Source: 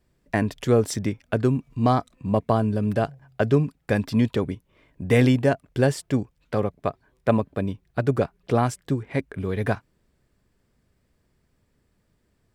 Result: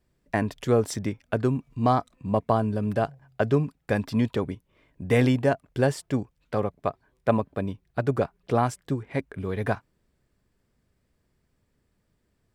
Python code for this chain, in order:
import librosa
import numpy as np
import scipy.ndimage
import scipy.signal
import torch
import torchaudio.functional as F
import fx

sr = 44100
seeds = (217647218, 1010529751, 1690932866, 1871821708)

y = fx.dynamic_eq(x, sr, hz=920.0, q=1.0, threshold_db=-37.0, ratio=4.0, max_db=4)
y = F.gain(torch.from_numpy(y), -3.5).numpy()